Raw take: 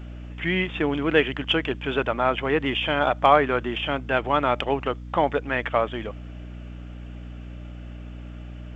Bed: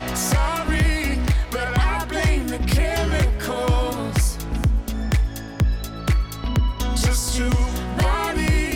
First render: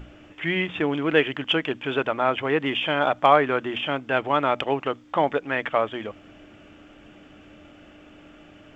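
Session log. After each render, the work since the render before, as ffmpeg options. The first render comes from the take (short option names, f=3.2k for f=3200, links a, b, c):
-af "bandreject=f=60:t=h:w=6,bandreject=f=120:t=h:w=6,bandreject=f=180:t=h:w=6,bandreject=f=240:t=h:w=6"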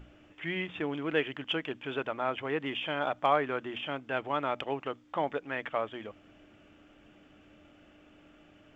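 -af "volume=-9.5dB"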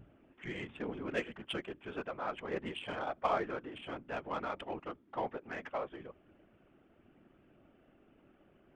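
-af "afftfilt=real='hypot(re,im)*cos(2*PI*random(0))':imag='hypot(re,im)*sin(2*PI*random(1))':win_size=512:overlap=0.75,adynamicsmooth=sensitivity=5.5:basefreq=2.2k"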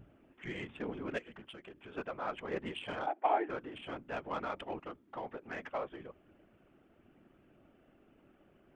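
-filter_complex "[0:a]asplit=3[a][b][c];[a]afade=t=out:st=1.17:d=0.02[d];[b]acompressor=threshold=-46dB:ratio=12:attack=3.2:release=140:knee=1:detection=peak,afade=t=in:st=1.17:d=0.02,afade=t=out:st=1.96:d=0.02[e];[c]afade=t=in:st=1.96:d=0.02[f];[d][e][f]amix=inputs=3:normalize=0,asplit=3[g][h][i];[g]afade=t=out:st=3.06:d=0.02[j];[h]highpass=f=310:w=0.5412,highpass=f=310:w=1.3066,equalizer=f=320:t=q:w=4:g=9,equalizer=f=530:t=q:w=4:g=-6,equalizer=f=810:t=q:w=4:g=10,equalizer=f=1.2k:t=q:w=4:g=-10,lowpass=f=2.8k:w=0.5412,lowpass=f=2.8k:w=1.3066,afade=t=in:st=3.06:d=0.02,afade=t=out:st=3.48:d=0.02[k];[i]afade=t=in:st=3.48:d=0.02[l];[j][k][l]amix=inputs=3:normalize=0,asettb=1/sr,asplit=3[m][n][o];[m]atrim=end=4.864[p];[n]atrim=start=4.86:end=5.5,asetpts=PTS-STARTPTS,afade=t=in:d=0.004:c=qsin,afade=t=out:st=0.636:d=0.004:c=qsin,acompressor=threshold=-39dB:ratio=2.5:attack=3.2:release=140:knee=1:detection=peak[q];[o]atrim=start=5.496[r];[p][q]acrossfade=d=0.004:c1=hsin:c2=qsin[s];[s][r]acrossfade=d=0.004:c1=qsin:c2=hsin"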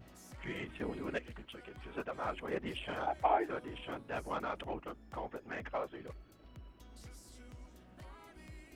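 -filter_complex "[1:a]volume=-33.5dB[a];[0:a][a]amix=inputs=2:normalize=0"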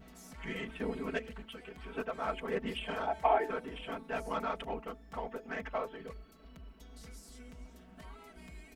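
-af "aecho=1:1:4.5:0.95,bandreject=f=219.9:t=h:w=4,bandreject=f=439.8:t=h:w=4,bandreject=f=659.7:t=h:w=4,bandreject=f=879.6:t=h:w=4"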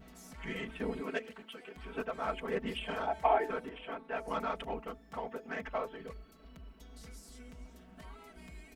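-filter_complex "[0:a]asettb=1/sr,asplit=3[a][b][c];[a]atrim=end=1.014[d];[b]atrim=start=1.01:end=1.76,asetpts=PTS-STARTPTS,afade=t=in:d=0.004:c=qsin,afade=t=out:st=0.746:d=0.004:c=qsin,highpass=230[e];[c]atrim=start=1.756[f];[d][e]acrossfade=d=0.004:c1=hsin:c2=qsin[g];[g][f]acrossfade=d=0.004:c1=qsin:c2=hsin,asettb=1/sr,asplit=3[h][i][j];[h]atrim=end=3.694[k];[i]atrim=start=3.69:end=4.28,asetpts=PTS-STARTPTS,afade=t=in:d=0.004:c=qsin,afade=t=out:st=0.586:d=0.004:c=qsin,bass=f=250:g=-9,treble=f=4k:g=-13[l];[j]atrim=start=4.276[m];[k][l]acrossfade=d=0.004:c1=hsin:c2=qsin[n];[n][m]acrossfade=d=0.004:c1=qsin:c2=hsin,asettb=1/sr,asplit=3[o][p][q];[o]atrim=end=4.984[r];[p]atrim=start=4.98:end=5.68,asetpts=PTS-STARTPTS,afade=t=in:d=0.004:c=qsin,afade=t=out:st=0.696:d=0.004:c=qsin,highpass=79[s];[q]atrim=start=5.676[t];[r][s]acrossfade=d=0.004:c1=hsin:c2=qsin[u];[u][t]acrossfade=d=0.004:c1=qsin:c2=hsin"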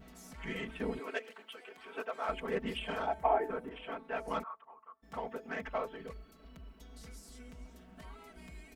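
-filter_complex "[0:a]asettb=1/sr,asplit=3[a][b][c];[a]atrim=end=0.994[d];[b]atrim=start=0.99:end=2.29,asetpts=PTS-STARTPTS,afade=t=in:d=0.004:c=qsin,afade=t=out:st=1.296:d=0.004:c=qsin,highpass=420[e];[c]atrim=start=2.286[f];[d][e]acrossfade=d=0.004:c1=hsin:c2=qsin[g];[g][f]acrossfade=d=0.004:c1=qsin:c2=hsin,asettb=1/sr,asplit=3[h][i][j];[h]atrim=end=3.144[k];[i]atrim=start=3.14:end=3.71,asetpts=PTS-STARTPTS,afade=t=in:d=0.004:c=qsin,afade=t=out:st=0.566:d=0.004:c=qsin,equalizer=f=4.5k:t=o:w=2.2:g=-12.5[l];[j]atrim=start=3.706[m];[k][l]acrossfade=d=0.004:c1=hsin:c2=qsin[n];[n][m]acrossfade=d=0.004:c1=qsin:c2=hsin,asplit=3[o][p][q];[o]afade=t=out:st=4.42:d=0.02[r];[p]bandpass=f=1.1k:t=q:w=10,afade=t=in:st=4.42:d=0.02,afade=t=out:st=5.02:d=0.02[s];[q]afade=t=in:st=5.02:d=0.02[t];[r][s][t]amix=inputs=3:normalize=0"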